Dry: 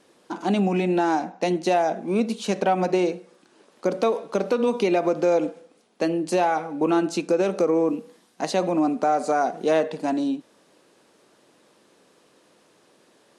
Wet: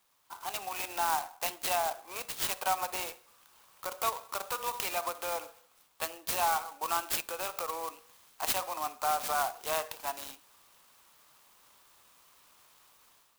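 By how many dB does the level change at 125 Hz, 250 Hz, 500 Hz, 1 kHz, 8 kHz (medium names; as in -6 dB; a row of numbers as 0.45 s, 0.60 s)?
-23.5 dB, -29.5 dB, -17.5 dB, -6.5 dB, +4.0 dB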